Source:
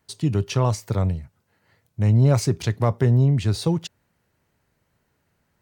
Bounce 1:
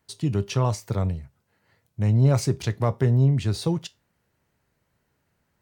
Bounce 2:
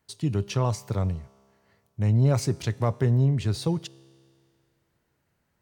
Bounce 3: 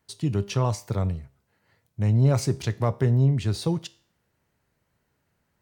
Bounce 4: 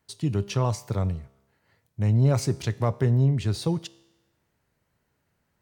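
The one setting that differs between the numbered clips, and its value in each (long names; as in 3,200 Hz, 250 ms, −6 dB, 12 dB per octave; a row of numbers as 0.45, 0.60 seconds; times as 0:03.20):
tuned comb filter, decay: 0.21, 2.2, 0.48, 1 seconds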